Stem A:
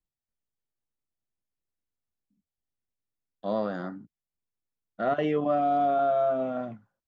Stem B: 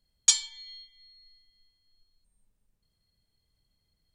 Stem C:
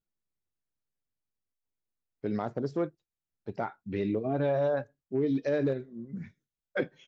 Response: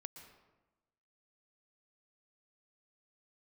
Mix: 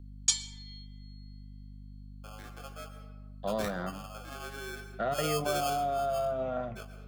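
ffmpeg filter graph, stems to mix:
-filter_complex "[0:a]equalizer=f=280:w=2:g=-11.5,aeval=exprs='val(0)+0.00447*(sin(2*PI*50*n/s)+sin(2*PI*2*50*n/s)/2+sin(2*PI*3*50*n/s)/3+sin(2*PI*4*50*n/s)/4+sin(2*PI*5*50*n/s)/5)':c=same,volume=1,asplit=3[s0][s1][s2];[s1]volume=0.398[s3];[1:a]volume=0.398,asplit=2[s4][s5];[s5]volume=0.631[s6];[2:a]flanger=delay=17:depth=4.7:speed=0.59,aeval=exprs='val(0)*sgn(sin(2*PI*960*n/s))':c=same,volume=0.668,asplit=2[s7][s8];[s8]volume=0.531[s9];[s2]apad=whole_len=311804[s10];[s7][s10]sidechaingate=range=0.0224:threshold=0.0158:ratio=16:detection=peak[s11];[3:a]atrim=start_sample=2205[s12];[s3][s6][s9]amix=inputs=3:normalize=0[s13];[s13][s12]afir=irnorm=-1:irlink=0[s14];[s0][s4][s11][s14]amix=inputs=4:normalize=0,acrossover=split=310|3000[s15][s16][s17];[s16]acompressor=threshold=0.0316:ratio=6[s18];[s15][s18][s17]amix=inputs=3:normalize=0"

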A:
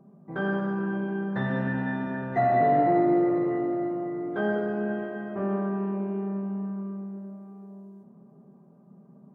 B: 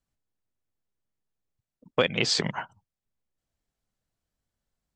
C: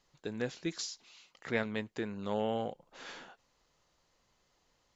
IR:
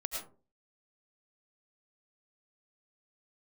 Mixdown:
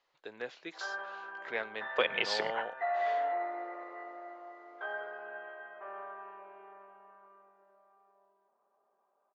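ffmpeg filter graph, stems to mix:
-filter_complex "[0:a]highpass=820,adelay=450,volume=0.631[s0];[1:a]volume=0.631,asplit=2[s1][s2];[s2]volume=0.0944[s3];[2:a]volume=0.944[s4];[3:a]atrim=start_sample=2205[s5];[s3][s5]afir=irnorm=-1:irlink=0[s6];[s0][s1][s4][s6]amix=inputs=4:normalize=0,acrossover=split=420 4200:gain=0.0708 1 0.112[s7][s8][s9];[s7][s8][s9]amix=inputs=3:normalize=0"

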